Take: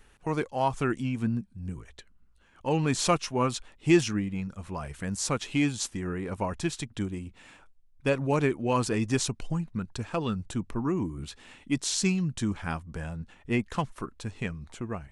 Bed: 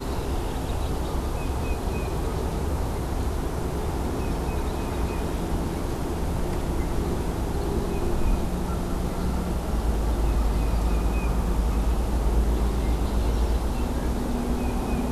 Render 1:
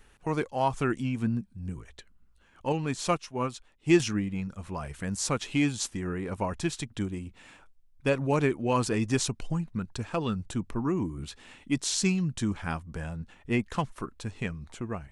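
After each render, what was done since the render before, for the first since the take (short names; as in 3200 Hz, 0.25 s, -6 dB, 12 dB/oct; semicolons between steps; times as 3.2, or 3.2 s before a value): 2.72–4 upward expander, over -36 dBFS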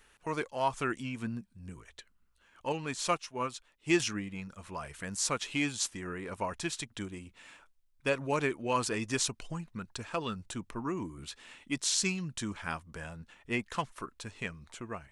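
low shelf 410 Hz -11 dB; notch 780 Hz, Q 12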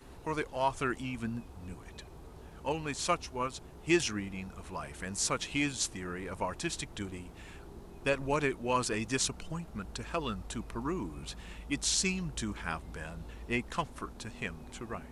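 add bed -23 dB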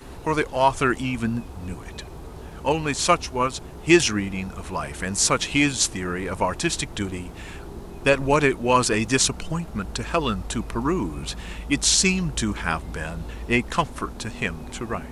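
gain +11.5 dB; limiter -3 dBFS, peak gain reduction 1.5 dB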